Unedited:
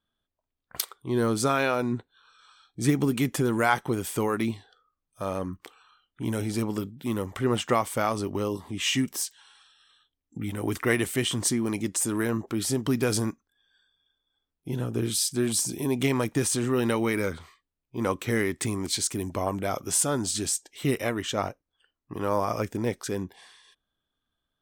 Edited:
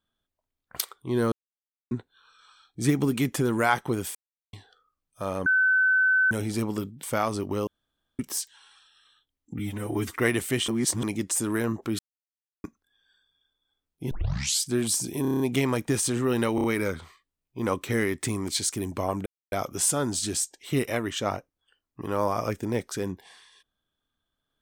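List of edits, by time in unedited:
1.32–1.91 s: mute
4.15–4.53 s: mute
5.46–6.31 s: bleep 1.52 kHz -18 dBFS
7.03–7.87 s: delete
8.51–9.03 s: room tone
10.43–10.81 s: stretch 1.5×
11.33–11.68 s: reverse
12.64–13.29 s: mute
14.76 s: tape start 0.51 s
15.87 s: stutter 0.03 s, 7 plays
17.02 s: stutter 0.03 s, 4 plays
19.64 s: insert silence 0.26 s

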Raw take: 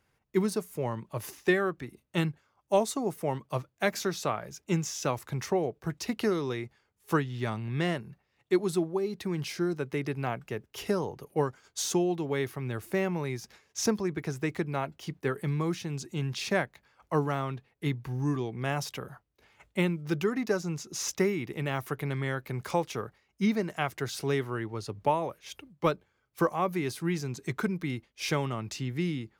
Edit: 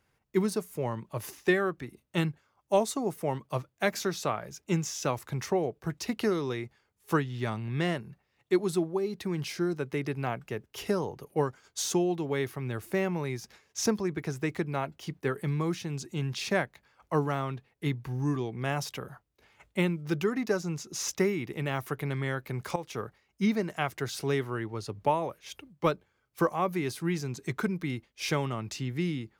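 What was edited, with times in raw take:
22.76–23.01 s: fade in, from -13.5 dB

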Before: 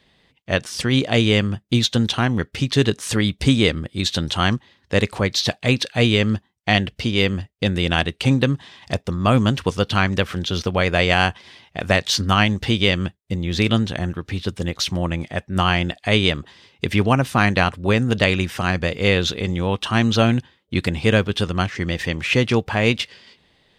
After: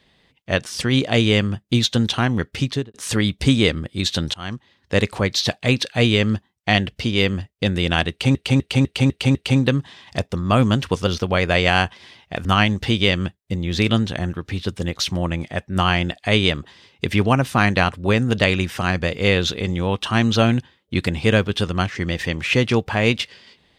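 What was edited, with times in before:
2.63–2.94 s: studio fade out
4.34–4.94 s: fade in, from -22 dB
8.10–8.35 s: loop, 6 plays
9.82–10.51 s: delete
11.89–12.25 s: delete

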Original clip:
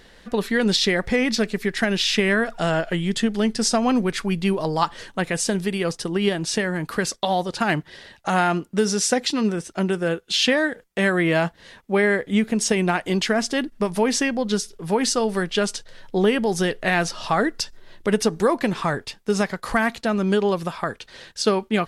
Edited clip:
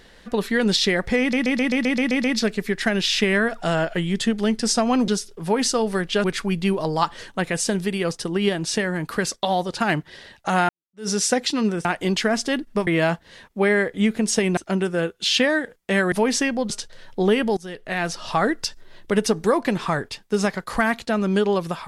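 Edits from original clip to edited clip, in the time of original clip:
1.20 s: stutter 0.13 s, 9 plays
8.49–8.88 s: fade in exponential
9.65–11.20 s: swap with 12.90–13.92 s
14.50–15.66 s: move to 4.04 s
16.53–17.28 s: fade in, from -21 dB

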